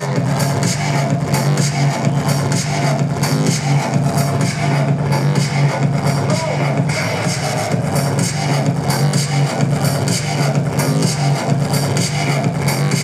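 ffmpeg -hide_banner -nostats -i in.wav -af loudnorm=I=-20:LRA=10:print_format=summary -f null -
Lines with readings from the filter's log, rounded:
Input Integrated:    -16.6 LUFS
Input True Peak:      -1.5 dBTP
Input LRA:             0.6 LU
Input Threshold:     -26.6 LUFS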